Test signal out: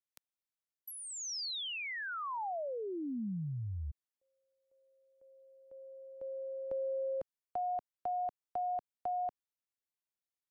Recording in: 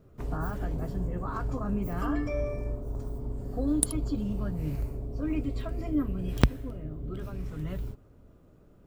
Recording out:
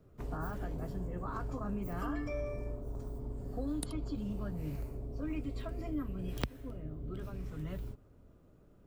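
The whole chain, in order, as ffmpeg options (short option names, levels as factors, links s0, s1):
-filter_complex "[0:a]acrossover=split=230|780|5700[s0][s1][s2][s3];[s0]acompressor=threshold=0.0251:ratio=4[s4];[s1]acompressor=threshold=0.0178:ratio=4[s5];[s2]acompressor=threshold=0.0178:ratio=4[s6];[s3]acompressor=threshold=0.00631:ratio=4[s7];[s4][s5][s6][s7]amix=inputs=4:normalize=0,volume=0.596"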